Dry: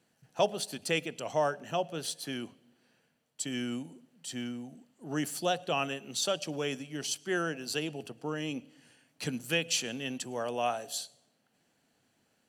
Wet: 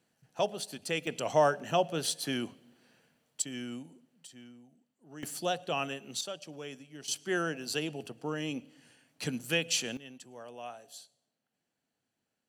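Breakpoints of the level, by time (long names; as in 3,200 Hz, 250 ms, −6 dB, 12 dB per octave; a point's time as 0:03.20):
−3 dB
from 0:01.07 +4 dB
from 0:03.42 −5 dB
from 0:04.27 −14.5 dB
from 0:05.23 −2 dB
from 0:06.21 −9.5 dB
from 0:07.08 0 dB
from 0:09.97 −12.5 dB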